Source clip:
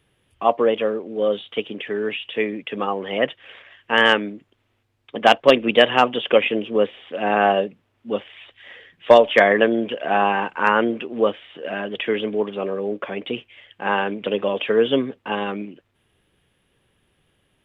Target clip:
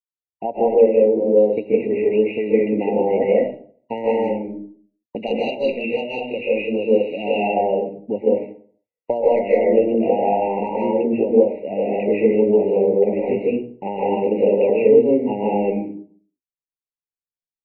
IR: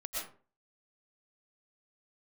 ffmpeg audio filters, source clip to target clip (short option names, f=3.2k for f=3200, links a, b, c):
-filter_complex "[0:a]asettb=1/sr,asplit=3[a][b][c];[a]atrim=end=5.164[d];[b]atrim=start=5.16:end=7.34,asetpts=PTS-STARTPTS,afade=t=in:d=0.004:c=qsin,afade=t=out:st=2.176:d=0.004:c=qsin,highshelf=f=2.2k:t=q:w=3:g=12.5[e];[c]atrim=start=7.336[f];[d][e]acrossfade=d=0.004:c1=hsin:c2=qsin[g];[g][f]acrossfade=d=0.004:c1=qsin:c2=hsin,agate=range=-56dB:threshold=-34dB:ratio=16:detection=peak,acompressor=threshold=-21dB:ratio=10[h];[1:a]atrim=start_sample=2205,asetrate=33957,aresample=44100[i];[h][i]afir=irnorm=-1:irlink=0,acrossover=split=5800[j][k];[k]acompressor=threshold=-58dB:ratio=4:attack=1:release=60[l];[j][l]amix=inputs=2:normalize=0,tiltshelf=f=1.3k:g=8.5,afftfilt=real='re*eq(mod(floor(b*sr/1024/950),2),0)':imag='im*eq(mod(floor(b*sr/1024/950),2),0)':win_size=1024:overlap=0.75"